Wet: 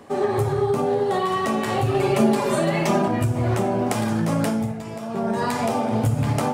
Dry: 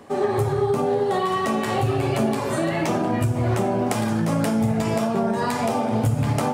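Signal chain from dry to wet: 1.94–3.08 comb 5 ms, depth 88%; 4.47–5.34 dip -10.5 dB, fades 0.32 s

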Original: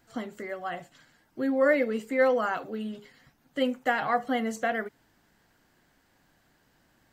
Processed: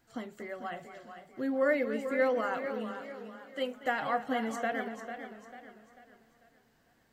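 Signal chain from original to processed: 2.6–3.73 HPF 150 Hz -> 400 Hz 12 dB/oct; on a send: dark delay 0.237 s, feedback 46%, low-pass 4000 Hz, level -14 dB; on the sum: warbling echo 0.445 s, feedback 40%, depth 89 cents, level -10 dB; gain -5 dB

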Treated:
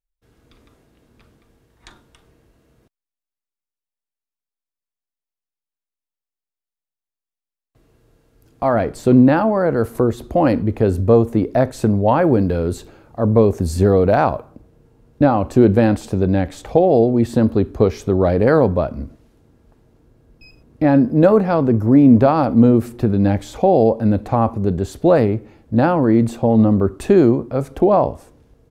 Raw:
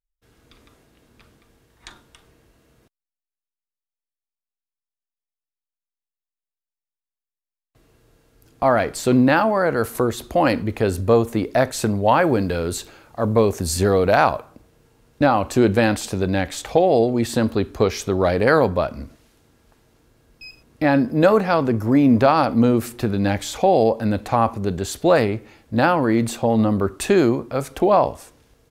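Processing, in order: tilt shelf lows +3 dB, from 8.73 s lows +7.5 dB; gain -1.5 dB

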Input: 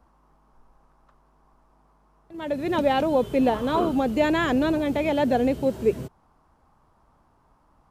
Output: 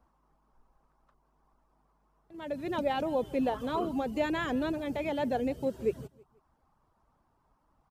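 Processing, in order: reverb removal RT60 0.57 s; feedback echo 0.162 s, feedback 36%, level -21.5 dB; 3.6–5.74 mismatched tape noise reduction encoder only; gain -8 dB

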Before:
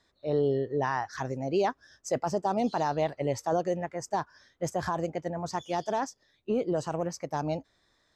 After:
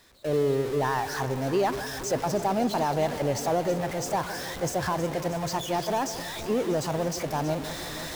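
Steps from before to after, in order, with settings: zero-crossing step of -31.5 dBFS; echo with dull and thin repeats by turns 0.16 s, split 870 Hz, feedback 86%, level -12 dB; gate with hold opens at -29 dBFS

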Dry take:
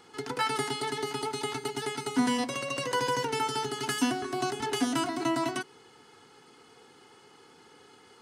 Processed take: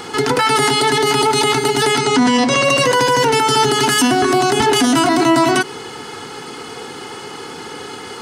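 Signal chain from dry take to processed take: 1.98–2.65 LPF 7700 Hz 24 dB/oct; maximiser +30 dB; gain -5 dB

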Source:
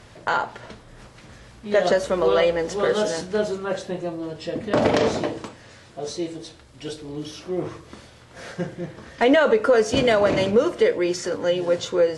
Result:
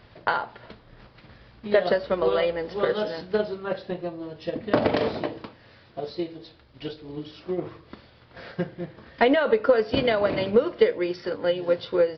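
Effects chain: transient shaper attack +7 dB, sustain -1 dB; downsampling 11025 Hz; gain -5.5 dB

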